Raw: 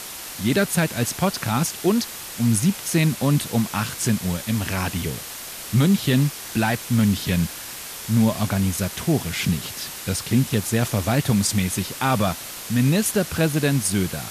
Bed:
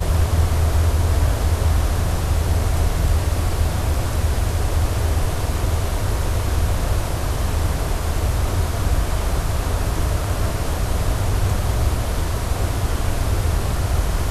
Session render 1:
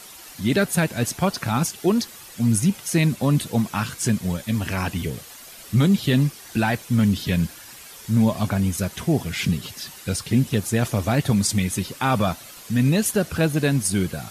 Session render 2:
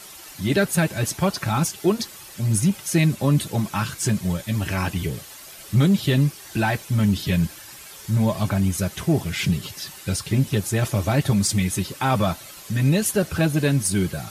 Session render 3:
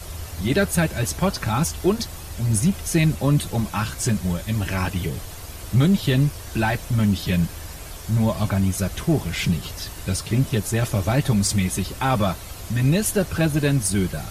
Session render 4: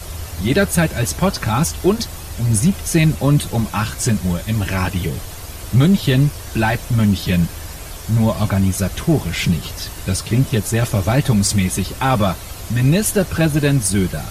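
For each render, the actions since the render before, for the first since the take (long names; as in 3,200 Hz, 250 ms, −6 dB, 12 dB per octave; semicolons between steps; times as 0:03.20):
broadband denoise 10 dB, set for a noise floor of −35 dBFS
in parallel at −12 dB: hard clipping −21.5 dBFS, distortion −7 dB; on the sum: notch comb filter 240 Hz
mix in bed −16.5 dB
level +4.5 dB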